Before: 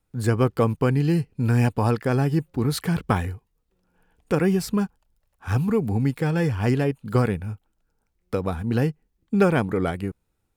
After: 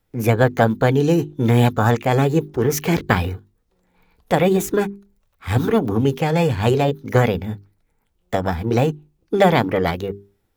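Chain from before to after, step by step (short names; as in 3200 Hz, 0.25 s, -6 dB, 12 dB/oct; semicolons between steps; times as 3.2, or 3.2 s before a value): formant shift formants +6 st; notches 50/100/150/200/250/300/350/400 Hz; gain +5 dB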